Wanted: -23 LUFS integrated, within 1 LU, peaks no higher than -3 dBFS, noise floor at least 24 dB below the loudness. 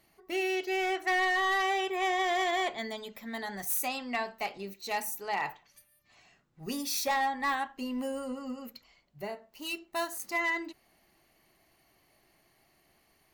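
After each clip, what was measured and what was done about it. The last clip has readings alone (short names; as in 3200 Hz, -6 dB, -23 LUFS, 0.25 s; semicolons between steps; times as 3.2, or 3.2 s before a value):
clipped 0.8%; flat tops at -24.0 dBFS; loudness -31.5 LUFS; peak -24.0 dBFS; loudness target -23.0 LUFS
-> clip repair -24 dBFS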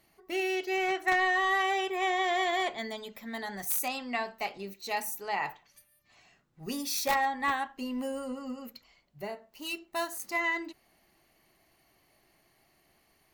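clipped 0.0%; loudness -31.0 LUFS; peak -15.0 dBFS; loudness target -23.0 LUFS
-> gain +8 dB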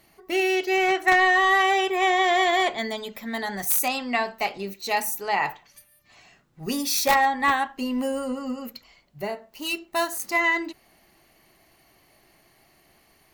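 loudness -23.0 LUFS; peak -7.0 dBFS; noise floor -61 dBFS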